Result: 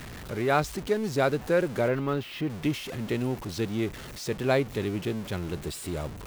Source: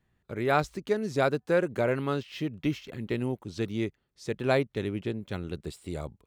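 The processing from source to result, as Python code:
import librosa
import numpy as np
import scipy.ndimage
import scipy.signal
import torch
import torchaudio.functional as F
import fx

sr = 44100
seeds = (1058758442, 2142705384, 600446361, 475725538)

y = x + 0.5 * 10.0 ** (-35.0 / 20.0) * np.sign(x)
y = fx.peak_eq(y, sr, hz=8500.0, db=-10.5, octaves=2.0, at=(1.88, 2.5))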